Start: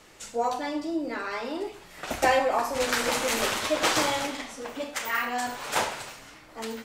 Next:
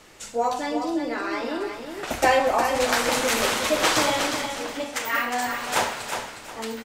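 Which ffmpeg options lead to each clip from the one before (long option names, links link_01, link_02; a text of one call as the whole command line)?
ffmpeg -i in.wav -af "aecho=1:1:361|722|1083:0.447|0.125|0.035,volume=3dB" out.wav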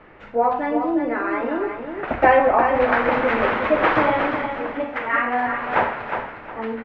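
ffmpeg -i in.wav -af "lowpass=frequency=2100:width=0.5412,lowpass=frequency=2100:width=1.3066,volume=5dB" out.wav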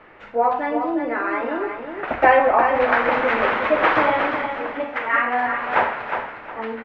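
ffmpeg -i in.wav -af "lowshelf=frequency=340:gain=-8.5,volume=2dB" out.wav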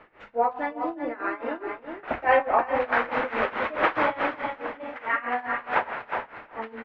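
ffmpeg -i in.wav -af "tremolo=f=4.7:d=0.88,volume=-3dB" out.wav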